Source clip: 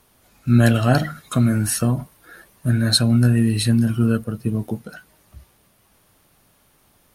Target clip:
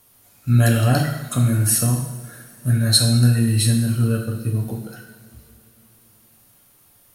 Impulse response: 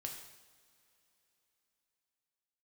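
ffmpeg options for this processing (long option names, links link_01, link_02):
-filter_complex "[0:a]highshelf=frequency=6700:gain=12[link_01];[1:a]atrim=start_sample=2205[link_02];[link_01][link_02]afir=irnorm=-1:irlink=0"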